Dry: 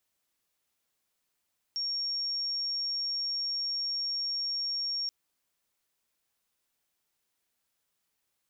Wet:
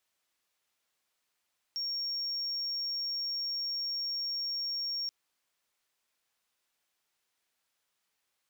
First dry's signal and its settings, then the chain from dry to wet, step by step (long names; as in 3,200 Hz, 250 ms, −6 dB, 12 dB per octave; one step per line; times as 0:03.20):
tone sine 5,540 Hz −29.5 dBFS 3.33 s
mid-hump overdrive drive 6 dB, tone 5,500 Hz, clips at −29 dBFS